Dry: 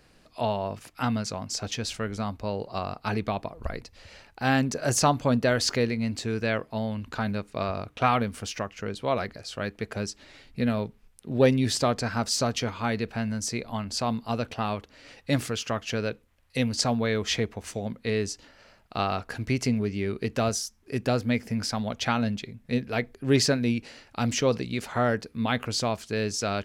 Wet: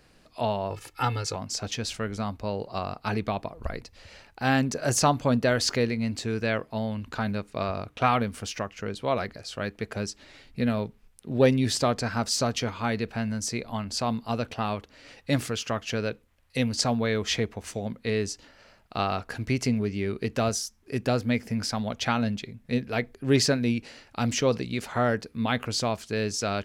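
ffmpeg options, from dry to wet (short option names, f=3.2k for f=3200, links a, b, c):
-filter_complex "[0:a]asettb=1/sr,asplit=3[a][b][c];[a]atrim=end=0.704[d];[b]atrim=start=0.7:end=1.36,asetpts=PTS-STARTPTS,afade=t=in:d=0.004:c=qsin,afade=t=out:st=0.656:d=0.004:c=qsin,aecho=1:1:2.3:0.94,atrim=end_sample=29106[e];[c]atrim=start=1.356[f];[d][e]acrossfade=d=0.004:c1=hsin:c2=qsin[g];[g][f]acrossfade=d=0.004:c1=qsin:c2=hsin"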